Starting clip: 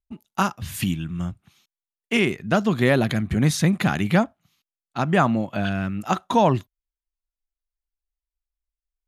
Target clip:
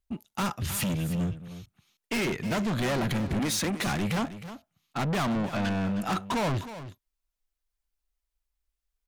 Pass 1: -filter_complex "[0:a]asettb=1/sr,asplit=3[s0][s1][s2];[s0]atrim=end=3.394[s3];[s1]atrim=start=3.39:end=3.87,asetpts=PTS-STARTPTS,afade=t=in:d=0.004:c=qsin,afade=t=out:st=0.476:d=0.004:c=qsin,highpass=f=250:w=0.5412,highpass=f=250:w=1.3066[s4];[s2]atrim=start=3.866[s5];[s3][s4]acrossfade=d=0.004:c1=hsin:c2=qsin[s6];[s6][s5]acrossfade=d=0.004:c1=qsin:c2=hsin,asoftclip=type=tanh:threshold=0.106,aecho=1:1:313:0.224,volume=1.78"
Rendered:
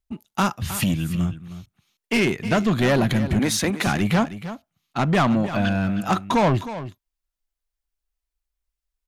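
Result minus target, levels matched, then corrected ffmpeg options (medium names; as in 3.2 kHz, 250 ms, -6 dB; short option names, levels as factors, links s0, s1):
saturation: distortion -6 dB
-filter_complex "[0:a]asettb=1/sr,asplit=3[s0][s1][s2];[s0]atrim=end=3.394[s3];[s1]atrim=start=3.39:end=3.87,asetpts=PTS-STARTPTS,afade=t=in:d=0.004:c=qsin,afade=t=out:st=0.476:d=0.004:c=qsin,highpass=f=250:w=0.5412,highpass=f=250:w=1.3066[s4];[s2]atrim=start=3.866[s5];[s3][s4]acrossfade=d=0.004:c1=hsin:c2=qsin[s6];[s6][s5]acrossfade=d=0.004:c1=qsin:c2=hsin,asoftclip=type=tanh:threshold=0.0282,aecho=1:1:313:0.224,volume=1.78"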